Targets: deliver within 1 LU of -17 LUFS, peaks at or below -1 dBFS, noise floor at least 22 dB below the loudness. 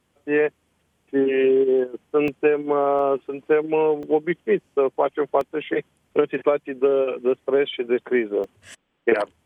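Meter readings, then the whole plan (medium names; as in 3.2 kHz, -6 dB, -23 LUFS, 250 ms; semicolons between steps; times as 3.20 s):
dropouts 5; longest dropout 2.0 ms; loudness -22.0 LUFS; peak level -6.5 dBFS; loudness target -17.0 LUFS
-> interpolate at 2.28/2.99/4.03/5.41/8.44 s, 2 ms; trim +5 dB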